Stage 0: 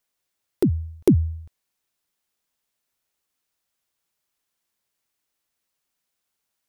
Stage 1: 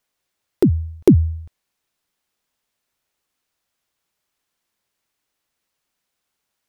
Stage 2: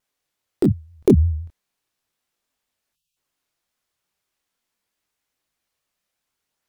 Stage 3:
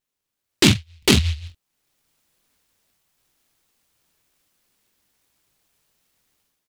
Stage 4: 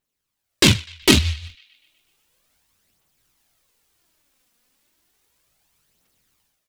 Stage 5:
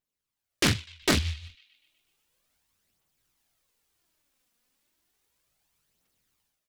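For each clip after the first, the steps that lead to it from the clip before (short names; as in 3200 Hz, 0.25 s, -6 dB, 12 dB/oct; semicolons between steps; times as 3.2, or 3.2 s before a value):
high shelf 6300 Hz -6 dB; gain +5 dB
spectral delete 2.93–3.16, 200–2500 Hz; chorus voices 2, 0.37 Hz, delay 24 ms, depth 4.9 ms; vibrato 5.7 Hz 99 cents; gain +1 dB
AGC gain up to 14.5 dB; doubler 45 ms -8 dB; noise-modulated delay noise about 3100 Hz, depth 0.42 ms; gain -3 dB
phaser 0.33 Hz, delay 4.3 ms, feedback 43%; narrowing echo 0.124 s, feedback 59%, band-pass 2700 Hz, level -20 dB; gain +1 dB
soft clip -5 dBFS, distortion -20 dB; Doppler distortion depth 0.63 ms; gain -8 dB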